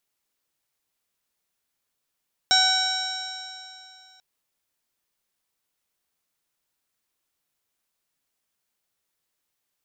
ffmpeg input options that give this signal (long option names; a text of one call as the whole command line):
ffmpeg -f lavfi -i "aevalsrc='0.0708*pow(10,-3*t/2.67)*sin(2*PI*750.86*t)+0.0708*pow(10,-3*t/2.67)*sin(2*PI*1506.88*t)+0.0299*pow(10,-3*t/2.67)*sin(2*PI*2273.17*t)+0.0211*pow(10,-3*t/2.67)*sin(2*PI*3054.7*t)+0.112*pow(10,-3*t/2.67)*sin(2*PI*3856.31*t)+0.0126*pow(10,-3*t/2.67)*sin(2*PI*4682.6*t)+0.119*pow(10,-3*t/2.67)*sin(2*PI*5537.94*t)+0.02*pow(10,-3*t/2.67)*sin(2*PI*6426.45*t)+0.0299*pow(10,-3*t/2.67)*sin(2*PI*7351.92*t)+0.00794*pow(10,-3*t/2.67)*sin(2*PI*8317.9*t)':duration=1.69:sample_rate=44100" out.wav